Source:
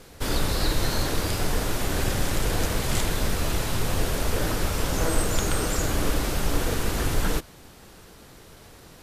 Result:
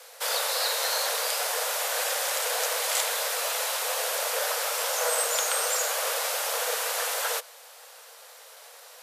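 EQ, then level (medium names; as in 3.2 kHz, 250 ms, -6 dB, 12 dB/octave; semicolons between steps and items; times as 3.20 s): steep high-pass 470 Hz 96 dB/octave; treble shelf 5.6 kHz +5 dB; +1.5 dB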